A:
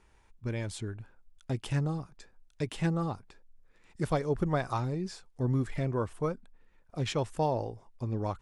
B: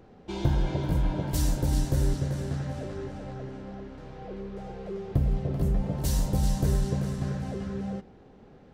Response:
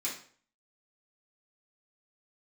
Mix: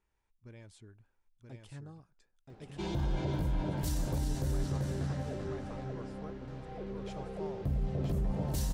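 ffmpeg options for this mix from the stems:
-filter_complex "[0:a]volume=-17.5dB,asplit=2[a][b];[b]volume=-3.5dB[c];[1:a]adelay=2500,volume=-3dB[d];[c]aecho=0:1:979:1[e];[a][d][e]amix=inputs=3:normalize=0,alimiter=level_in=0.5dB:limit=-24dB:level=0:latency=1:release=36,volume=-0.5dB"

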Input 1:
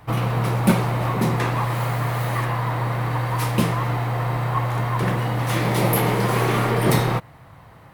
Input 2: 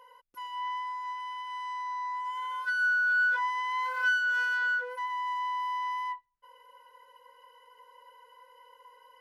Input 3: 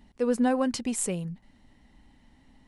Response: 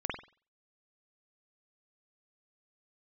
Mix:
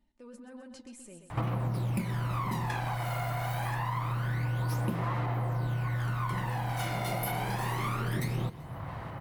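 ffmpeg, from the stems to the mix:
-filter_complex "[0:a]bandreject=f=450:w=13,acompressor=threshold=-34dB:ratio=2,aphaser=in_gain=1:out_gain=1:delay=1.4:decay=0.64:speed=0.26:type=sinusoidal,adelay=1300,volume=-2dB,asplit=2[a][b];[b]volume=-20.5dB[c];[1:a]adelay=1600,volume=0dB[d];[2:a]aecho=1:1:3.3:0.55,volume=-14.5dB,asplit=2[e][f];[f]volume=-14.5dB[g];[d][e]amix=inputs=2:normalize=0,flanger=delay=4.7:depth=6.2:regen=52:speed=1.8:shape=triangular,alimiter=level_in=17dB:limit=-24dB:level=0:latency=1:release=19,volume=-17dB,volume=0dB[h];[c][g]amix=inputs=2:normalize=0,aecho=0:1:129|258|387|516|645|774|903|1032:1|0.52|0.27|0.141|0.0731|0.038|0.0198|0.0103[i];[a][h][i]amix=inputs=3:normalize=0,acompressor=threshold=-28dB:ratio=6"

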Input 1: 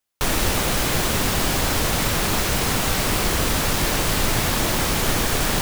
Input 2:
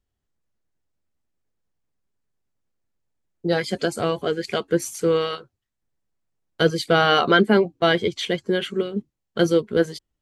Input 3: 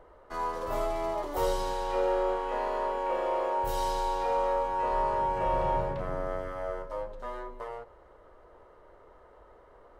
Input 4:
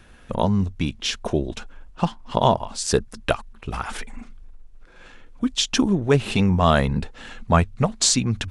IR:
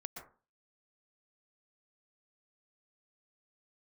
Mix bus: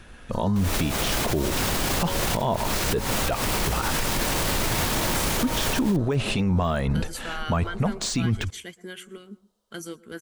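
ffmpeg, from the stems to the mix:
-filter_complex "[0:a]adelay=350,volume=0dB[a];[1:a]equalizer=f=125:t=o:w=1:g=-10,equalizer=f=500:t=o:w=1:g=-12,equalizer=f=4k:t=o:w=1:g=-10,equalizer=f=8k:t=o:w=1:g=4,alimiter=limit=-15dB:level=0:latency=1:release=132,crystalizer=i=2.5:c=0,adelay=350,volume=-12dB,asplit=2[b][c];[c]volume=-11.5dB[d];[2:a]afwtdn=0.0158,aexciter=amount=15.1:drive=8.1:freq=3.2k,volume=-7dB[e];[3:a]deesser=0.7,volume=3dB,asplit=3[f][g][h];[g]volume=-23.5dB[i];[h]apad=whole_len=262912[j];[a][j]sidechaincompress=threshold=-28dB:ratio=6:attack=11:release=134[k];[4:a]atrim=start_sample=2205[l];[d][i]amix=inputs=2:normalize=0[m];[m][l]afir=irnorm=-1:irlink=0[n];[k][b][e][f][n]amix=inputs=5:normalize=0,alimiter=limit=-15dB:level=0:latency=1:release=25"

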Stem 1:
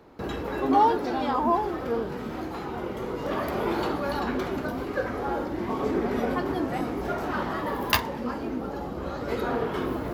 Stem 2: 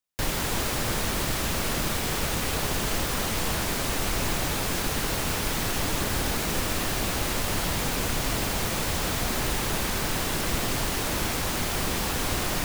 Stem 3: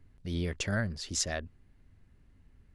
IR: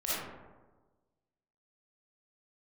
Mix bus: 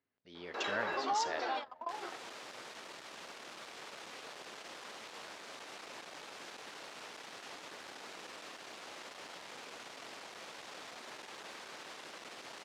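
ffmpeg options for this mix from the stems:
-filter_complex "[0:a]highpass=f=1.1k:p=1,acompressor=threshold=-33dB:ratio=6,adelay=350,volume=2dB[a];[1:a]aeval=exprs='clip(val(0),-1,0.0355)':c=same,adelay=1700,volume=-16dB[b];[2:a]dynaudnorm=f=120:g=9:m=14dB,lowpass=6.5k,volume=-14dB,asplit=3[c][d][e];[d]volume=-17.5dB[f];[e]apad=whole_len=462174[g];[a][g]sidechaingate=range=-33dB:threshold=-58dB:ratio=16:detection=peak[h];[3:a]atrim=start_sample=2205[i];[f][i]afir=irnorm=-1:irlink=0[j];[h][b][c][j]amix=inputs=4:normalize=0,highpass=430,lowpass=5.5k"

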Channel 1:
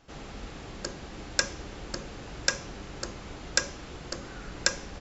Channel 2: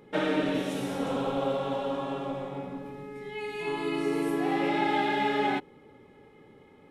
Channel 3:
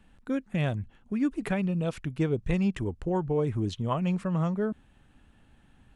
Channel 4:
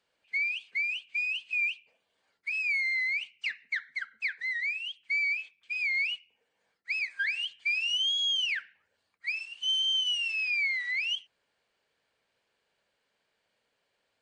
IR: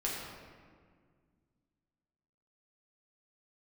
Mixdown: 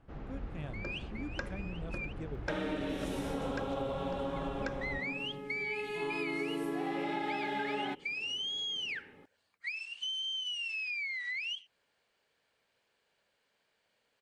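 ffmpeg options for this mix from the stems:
-filter_complex "[0:a]lowpass=1.8k,lowshelf=f=230:g=8.5,volume=-6dB[a];[1:a]adelay=2350,volume=-2.5dB[b];[2:a]volume=-16dB,asplit=2[c][d];[3:a]acompressor=threshold=-36dB:ratio=6,adelay=400,volume=0.5dB,asplit=3[e][f][g];[e]atrim=end=2.13,asetpts=PTS-STARTPTS,afade=t=out:st=2.126:d=0.004:c=hsin[h];[f]atrim=start=2.13:end=4.29,asetpts=PTS-STARTPTS,volume=0[i];[g]atrim=start=4.29,asetpts=PTS-STARTPTS,afade=t=in:d=0.004:c=hsin[j];[h][i][j]concat=n=3:v=0:a=1[k];[d]apad=whole_len=644600[l];[k][l]sidechaincompress=threshold=-57dB:ratio=8:attack=16:release=145[m];[a][b][c][m]amix=inputs=4:normalize=0,acompressor=threshold=-32dB:ratio=6"

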